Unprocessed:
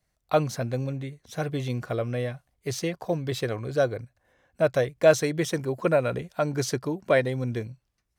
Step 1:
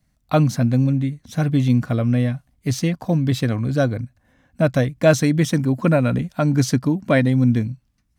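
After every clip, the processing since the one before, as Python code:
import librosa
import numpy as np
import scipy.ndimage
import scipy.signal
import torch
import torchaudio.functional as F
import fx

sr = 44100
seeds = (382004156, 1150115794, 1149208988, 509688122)

y = fx.low_shelf_res(x, sr, hz=320.0, db=6.5, q=3.0)
y = y * 10.0 ** (4.5 / 20.0)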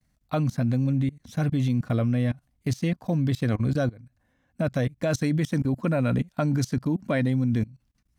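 y = fx.level_steps(x, sr, step_db=23)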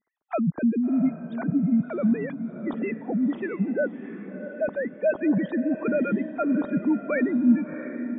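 y = fx.sine_speech(x, sr)
y = fx.spec_gate(y, sr, threshold_db=-25, keep='strong')
y = fx.echo_diffused(y, sr, ms=682, feedback_pct=47, wet_db=-10.5)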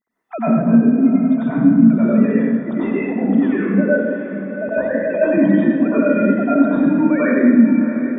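y = fx.rev_plate(x, sr, seeds[0], rt60_s=1.3, hf_ratio=0.75, predelay_ms=80, drr_db=-10.0)
y = y * 10.0 ** (-1.0 / 20.0)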